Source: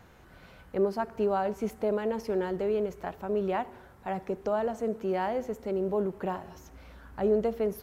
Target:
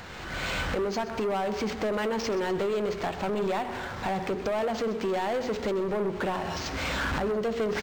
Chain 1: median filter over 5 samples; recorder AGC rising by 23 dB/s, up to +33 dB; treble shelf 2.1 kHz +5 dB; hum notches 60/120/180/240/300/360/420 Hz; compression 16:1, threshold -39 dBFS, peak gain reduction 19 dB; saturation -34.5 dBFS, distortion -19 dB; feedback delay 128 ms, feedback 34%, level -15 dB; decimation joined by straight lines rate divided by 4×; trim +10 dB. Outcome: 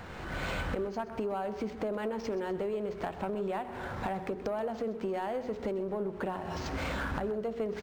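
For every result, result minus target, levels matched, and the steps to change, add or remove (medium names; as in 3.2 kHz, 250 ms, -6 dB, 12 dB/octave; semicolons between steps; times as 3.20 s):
compression: peak gain reduction +9.5 dB; 4 kHz band -5.0 dB
change: compression 16:1, threshold -28.5 dBFS, peak gain reduction 9 dB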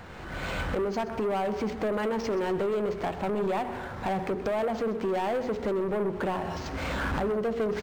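4 kHz band -5.5 dB
change: treble shelf 2.1 kHz +16 dB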